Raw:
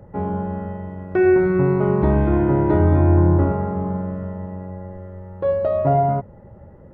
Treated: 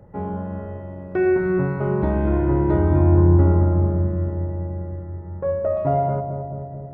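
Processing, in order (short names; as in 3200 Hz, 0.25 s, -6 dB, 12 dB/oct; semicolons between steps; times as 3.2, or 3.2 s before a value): 5.03–5.77 LPF 2200 Hz 24 dB/oct; on a send: darkening echo 0.218 s, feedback 78%, low-pass 800 Hz, level -6 dB; on the sum: gain -3.5 dB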